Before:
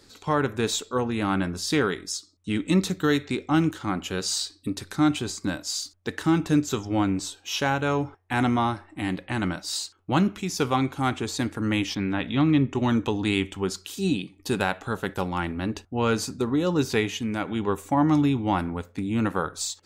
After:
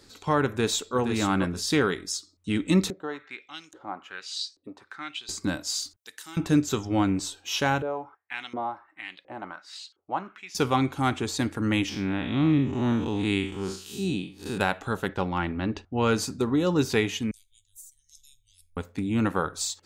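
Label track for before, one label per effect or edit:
0.470000	0.970000	echo throw 470 ms, feedback 15%, level -7.5 dB
2.900000	5.290000	LFO band-pass saw up 1.2 Hz 430–6800 Hz
5.960000	6.370000	differentiator
7.820000	10.550000	LFO band-pass saw up 1.4 Hz 450–4300 Hz
11.890000	14.580000	spectral blur width 130 ms
15.080000	15.940000	low-pass 4.3 kHz
17.310000	18.770000	inverse Chebyshev band-stop 180–1200 Hz, stop band 80 dB

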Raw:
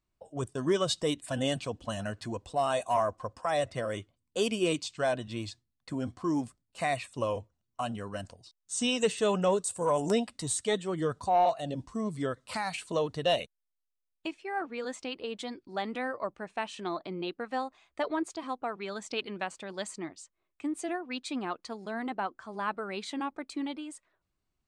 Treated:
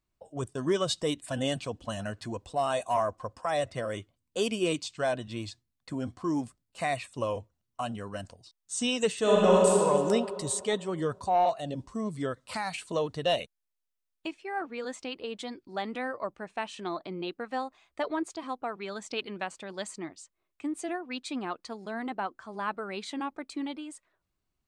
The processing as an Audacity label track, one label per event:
9.200000	9.780000	reverb throw, RT60 2.6 s, DRR -5.5 dB

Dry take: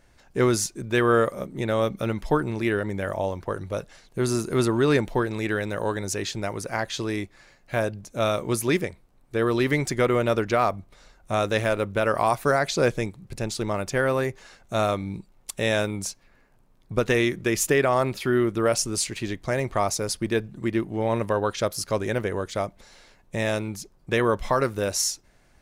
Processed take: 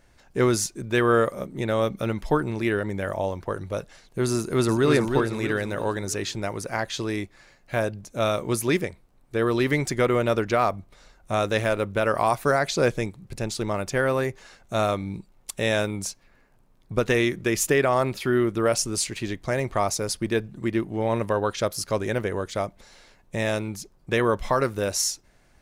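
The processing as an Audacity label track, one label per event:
4.360000	4.880000	echo throw 320 ms, feedback 45%, level -4.5 dB

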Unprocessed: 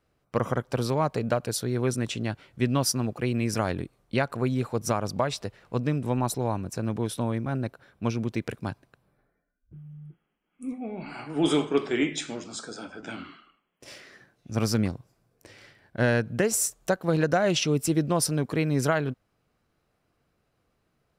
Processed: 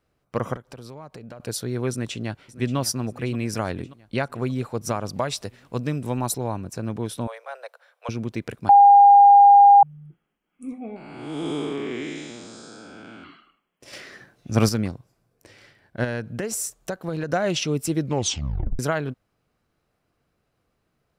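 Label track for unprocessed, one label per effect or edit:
0.560000	1.400000	compression 5:1, threshold -38 dBFS
1.900000	2.770000	echo throw 580 ms, feedback 60%, level -15.5 dB
5.130000	6.380000	treble shelf 4.5 kHz +8 dB
7.270000	8.090000	steep high-pass 480 Hz 72 dB/octave
8.690000	9.830000	bleep 807 Hz -7.5 dBFS
10.960000	13.240000	spectral blur width 333 ms
13.930000	14.690000	gain +7.5 dB
16.040000	17.300000	compression 4:1, threshold -24 dBFS
18.010000	18.010000	tape stop 0.78 s

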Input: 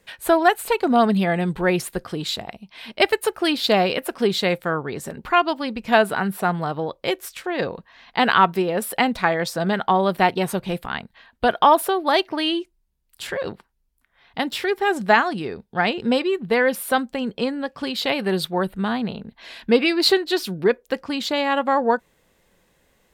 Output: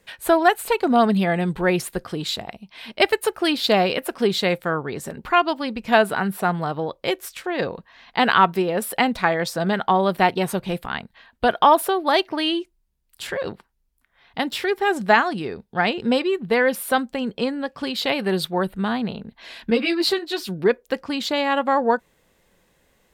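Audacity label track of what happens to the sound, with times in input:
19.700000	20.490000	three-phase chorus

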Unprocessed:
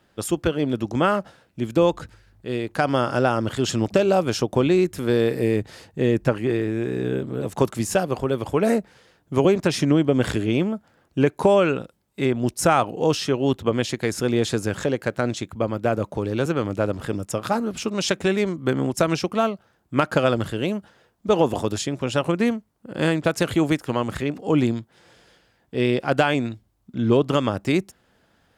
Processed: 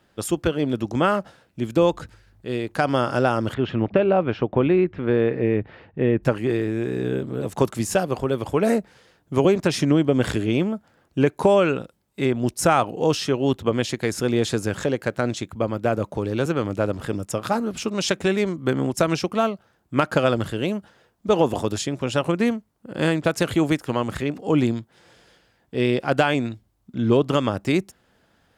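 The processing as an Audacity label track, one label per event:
3.540000	6.230000	low-pass 2.7 kHz 24 dB/octave

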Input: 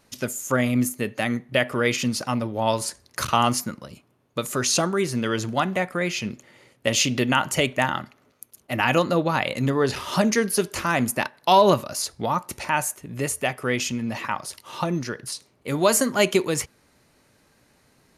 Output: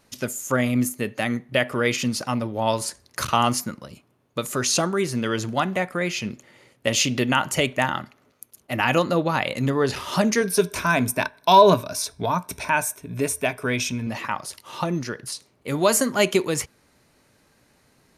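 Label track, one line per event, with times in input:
10.400000	14.070000	rippled EQ curve crests per octave 1.6, crest to trough 10 dB

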